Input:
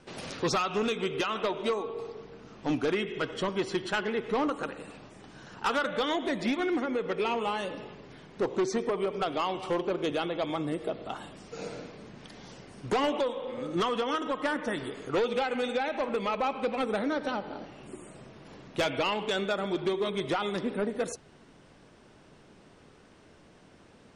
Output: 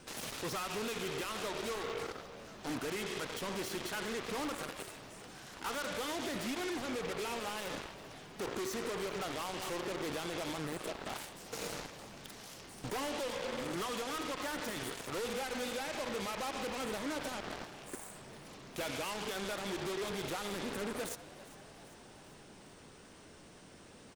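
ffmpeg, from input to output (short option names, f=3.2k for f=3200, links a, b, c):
-filter_complex "[0:a]acrossover=split=2800[a][b];[b]acompressor=threshold=-45dB:ratio=4:attack=1:release=60[c];[a][c]amix=inputs=2:normalize=0,aemphasis=mode=production:type=50fm,alimiter=level_in=6dB:limit=-24dB:level=0:latency=1:release=29,volume=-6dB,aeval=exprs='0.0316*(cos(1*acos(clip(val(0)/0.0316,-1,1)))-cos(1*PI/2))+0.0112*(cos(7*acos(clip(val(0)/0.0316,-1,1)))-cos(7*PI/2))':c=same,asplit=2[d][e];[e]asplit=6[f][g][h][i][j][k];[f]adelay=396,afreqshift=100,volume=-17.5dB[l];[g]adelay=792,afreqshift=200,volume=-21.8dB[m];[h]adelay=1188,afreqshift=300,volume=-26.1dB[n];[i]adelay=1584,afreqshift=400,volume=-30.4dB[o];[j]adelay=1980,afreqshift=500,volume=-34.7dB[p];[k]adelay=2376,afreqshift=600,volume=-39dB[q];[l][m][n][o][p][q]amix=inputs=6:normalize=0[r];[d][r]amix=inputs=2:normalize=0,volume=-2.5dB"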